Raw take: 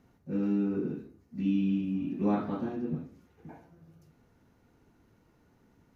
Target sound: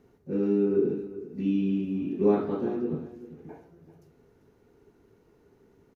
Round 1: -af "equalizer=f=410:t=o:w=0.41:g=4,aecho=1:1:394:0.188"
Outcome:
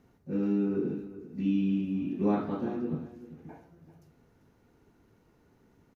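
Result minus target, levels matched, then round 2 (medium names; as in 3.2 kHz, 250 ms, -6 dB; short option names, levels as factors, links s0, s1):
500 Hz band -5.0 dB
-af "equalizer=f=410:t=o:w=0.41:g=14.5,aecho=1:1:394:0.188"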